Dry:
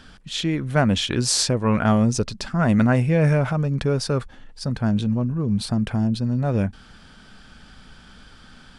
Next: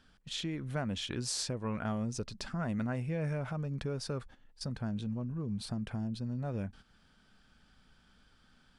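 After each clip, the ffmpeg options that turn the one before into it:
-af "agate=range=-12dB:threshold=-37dB:ratio=16:detection=peak,acompressor=threshold=-34dB:ratio=2,volume=-6dB"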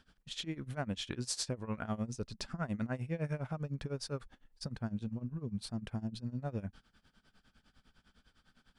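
-af "tremolo=f=9.9:d=0.89,volume=1dB"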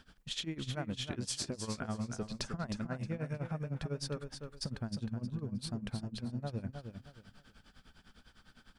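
-af "acompressor=threshold=-41dB:ratio=6,aecho=1:1:312|624|936:0.447|0.121|0.0326,volume=6dB"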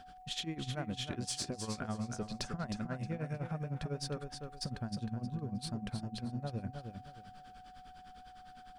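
-filter_complex "[0:a]asplit=2[a][b];[b]asoftclip=type=tanh:threshold=-39dB,volume=-8.5dB[c];[a][c]amix=inputs=2:normalize=0,aeval=exprs='val(0)+0.00316*sin(2*PI*740*n/s)':c=same,volume=-2dB"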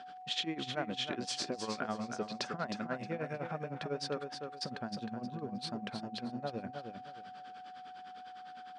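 -af "highpass=290,lowpass=4.6k,volume=5.5dB"

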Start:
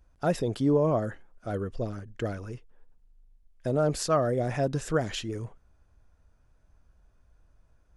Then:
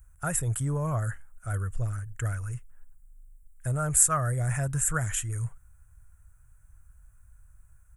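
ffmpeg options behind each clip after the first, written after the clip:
-af "firequalizer=gain_entry='entry(120,0);entry(220,-22);entry(410,-21);entry(1400,-2);entry(4500,-23);entry(7700,12)':delay=0.05:min_phase=1,volume=7dB"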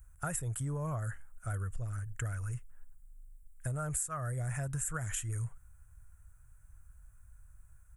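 -af "acompressor=threshold=-31dB:ratio=10,volume=-1.5dB"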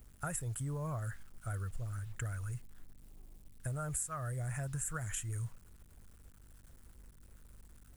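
-af "acrusher=bits=9:mix=0:aa=0.000001,aeval=exprs='val(0)+0.001*(sin(2*PI*50*n/s)+sin(2*PI*2*50*n/s)/2+sin(2*PI*3*50*n/s)/3+sin(2*PI*4*50*n/s)/4+sin(2*PI*5*50*n/s)/5)':c=same,volume=-2.5dB"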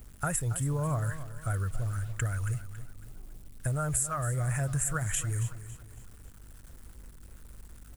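-af "aecho=1:1:277|554|831|1108:0.211|0.0824|0.0321|0.0125,volume=8dB"

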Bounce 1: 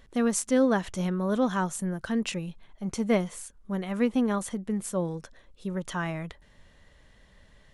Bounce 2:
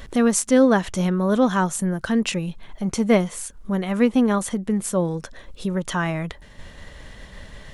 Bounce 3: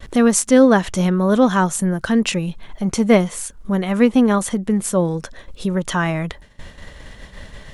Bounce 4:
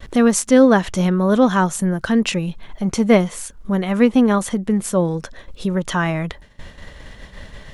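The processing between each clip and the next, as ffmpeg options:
-filter_complex "[0:a]agate=range=-33dB:threshold=-52dB:ratio=3:detection=peak,asplit=2[a][b];[b]acompressor=mode=upward:threshold=-27dB:ratio=2.5,volume=2dB[c];[a][c]amix=inputs=2:normalize=0"
-af "agate=range=-33dB:threshold=-37dB:ratio=3:detection=peak,volume=4dB"
-af "equalizer=f=9k:t=o:w=0.86:g=-3.5"

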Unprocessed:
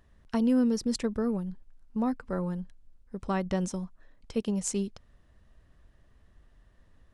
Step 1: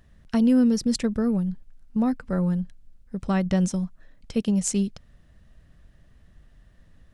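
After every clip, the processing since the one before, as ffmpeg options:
-af "equalizer=f=160:t=o:w=0.67:g=5,equalizer=f=400:t=o:w=0.67:g=-4,equalizer=f=1k:t=o:w=0.67:g=-6,volume=5.5dB"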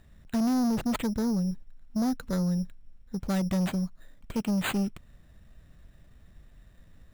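-af "acrusher=samples=8:mix=1:aa=0.000001,asoftclip=type=tanh:threshold=-23dB"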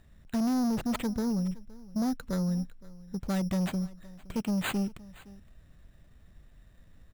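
-af "aecho=1:1:517:0.0891,volume=-2dB"

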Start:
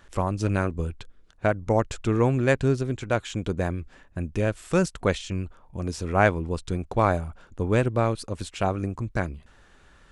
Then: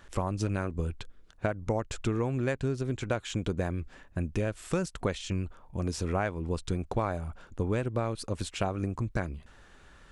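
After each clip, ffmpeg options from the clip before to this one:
-af "acompressor=threshold=-25dB:ratio=12"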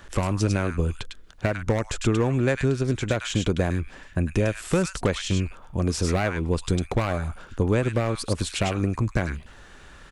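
-filter_complex "[0:a]acrossover=split=490|1300[a][b][c];[b]aeval=exprs='0.0266*(abs(mod(val(0)/0.0266+3,4)-2)-1)':c=same[d];[c]aecho=1:1:102:0.708[e];[a][d][e]amix=inputs=3:normalize=0,volume=7.5dB"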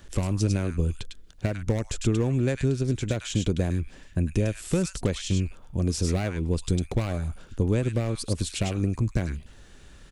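-af "equalizer=f=1.2k:t=o:w=2.3:g=-10.5"

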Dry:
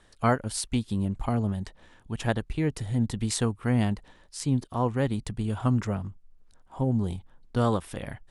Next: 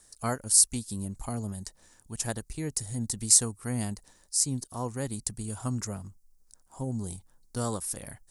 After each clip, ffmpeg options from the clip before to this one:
-af "aexciter=amount=10.6:drive=4.7:freq=4.8k,volume=-7.5dB"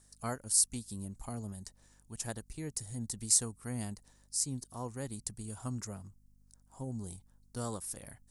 -af "aeval=exprs='val(0)+0.00126*(sin(2*PI*50*n/s)+sin(2*PI*2*50*n/s)/2+sin(2*PI*3*50*n/s)/3+sin(2*PI*4*50*n/s)/4+sin(2*PI*5*50*n/s)/5)':c=same,volume=-7dB"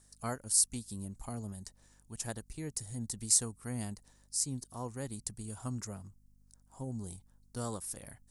-af anull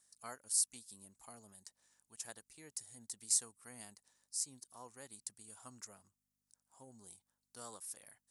-af "highpass=f=1.1k:p=1,volume=-5.5dB"

